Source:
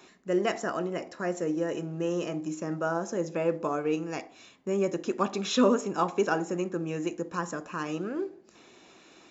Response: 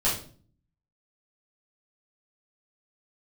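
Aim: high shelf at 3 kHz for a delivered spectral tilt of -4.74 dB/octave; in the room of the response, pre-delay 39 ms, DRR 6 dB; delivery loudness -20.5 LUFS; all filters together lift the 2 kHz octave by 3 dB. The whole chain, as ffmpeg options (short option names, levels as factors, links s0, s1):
-filter_complex "[0:a]equalizer=f=2000:t=o:g=5.5,highshelf=f=3000:g=-3.5,asplit=2[s0][s1];[1:a]atrim=start_sample=2205,adelay=39[s2];[s1][s2]afir=irnorm=-1:irlink=0,volume=0.133[s3];[s0][s3]amix=inputs=2:normalize=0,volume=2.51"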